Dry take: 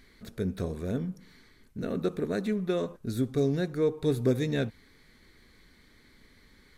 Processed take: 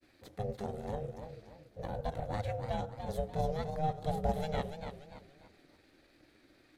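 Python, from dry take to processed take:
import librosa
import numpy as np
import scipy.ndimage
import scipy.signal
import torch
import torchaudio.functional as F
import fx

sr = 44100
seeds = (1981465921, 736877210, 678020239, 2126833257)

y = x * np.sin(2.0 * np.pi * 310.0 * np.arange(len(x)) / sr)
y = fx.granulator(y, sr, seeds[0], grain_ms=100.0, per_s=20.0, spray_ms=20.0, spread_st=0)
y = fx.echo_warbled(y, sr, ms=288, feedback_pct=36, rate_hz=2.8, cents=119, wet_db=-8.0)
y = y * 10.0 ** (-3.0 / 20.0)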